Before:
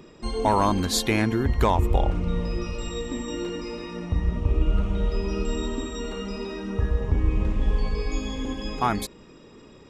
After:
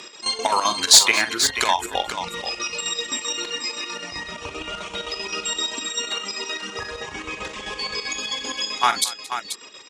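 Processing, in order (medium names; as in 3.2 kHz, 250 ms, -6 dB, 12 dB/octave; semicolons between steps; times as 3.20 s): frequency weighting ITU-R 468; reverb removal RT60 0.79 s; bass shelf 230 Hz -8 dB; in parallel at -1 dB: compression, threshold -39 dBFS, peak gain reduction 26 dB; on the sum: square tremolo 7.7 Hz, depth 65%, duty 60%; hard clipper -9 dBFS, distortion -16 dB; on a send: multi-tap echo 44/58/224/485 ms -10.5/-19.5/-19.5/-9 dB; on the sum: trim +5 dB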